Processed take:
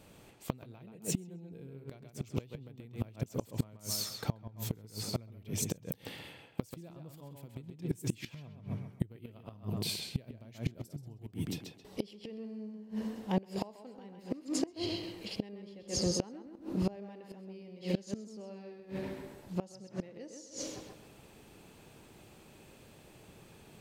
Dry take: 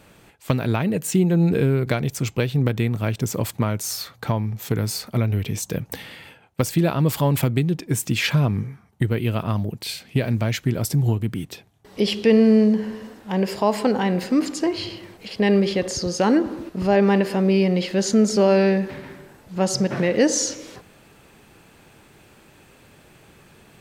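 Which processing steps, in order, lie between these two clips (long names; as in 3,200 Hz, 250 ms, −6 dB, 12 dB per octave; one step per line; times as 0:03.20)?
parametric band 1,600 Hz −7 dB 1.2 octaves
on a send: tape delay 132 ms, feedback 31%, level −3.5 dB, low-pass 5,200 Hz
on the sum: gate with flip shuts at −13 dBFS, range −25 dB
level −5.5 dB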